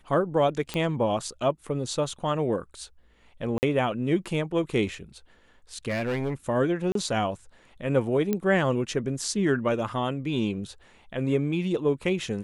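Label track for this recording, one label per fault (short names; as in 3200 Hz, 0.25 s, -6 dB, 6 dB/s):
0.740000	0.740000	pop -15 dBFS
3.580000	3.630000	gap 49 ms
5.880000	6.340000	clipped -24 dBFS
6.920000	6.950000	gap 33 ms
8.330000	8.330000	pop -13 dBFS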